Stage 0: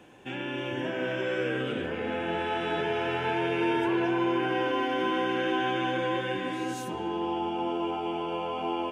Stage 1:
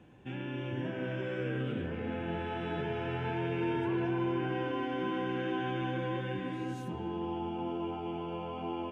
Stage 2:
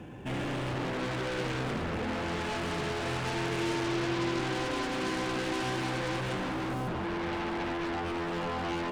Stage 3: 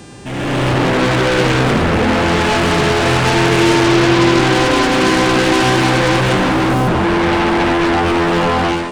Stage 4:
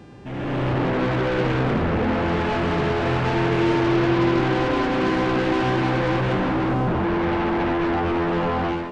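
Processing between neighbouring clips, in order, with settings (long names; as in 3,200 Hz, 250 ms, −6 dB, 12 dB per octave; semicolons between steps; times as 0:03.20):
bass and treble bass +13 dB, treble −7 dB; level −8.5 dB
running median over 9 samples; in parallel at −11.5 dB: sine wavefolder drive 18 dB, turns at −22.5 dBFS
automatic gain control gain up to 12 dB; hum with harmonics 400 Hz, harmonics 24, −51 dBFS −2 dB per octave; level +7.5 dB
head-to-tape spacing loss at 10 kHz 25 dB; level −6.5 dB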